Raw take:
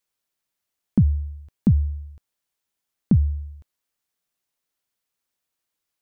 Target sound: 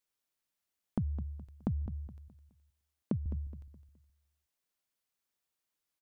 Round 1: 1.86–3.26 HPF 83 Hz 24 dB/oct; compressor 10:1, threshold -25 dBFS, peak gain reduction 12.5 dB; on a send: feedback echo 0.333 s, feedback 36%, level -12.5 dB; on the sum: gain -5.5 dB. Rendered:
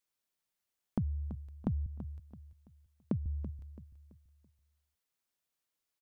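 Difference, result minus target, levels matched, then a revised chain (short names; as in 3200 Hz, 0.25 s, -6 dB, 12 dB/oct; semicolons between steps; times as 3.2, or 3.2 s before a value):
echo 0.123 s late
1.86–3.26 HPF 83 Hz 24 dB/oct; compressor 10:1, threshold -25 dBFS, peak gain reduction 12.5 dB; on a send: feedback echo 0.21 s, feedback 36%, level -12.5 dB; on the sum: gain -5.5 dB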